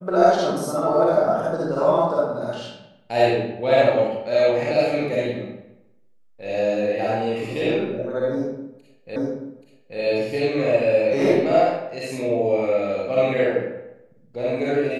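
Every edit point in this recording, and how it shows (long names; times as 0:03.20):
0:09.16: the same again, the last 0.83 s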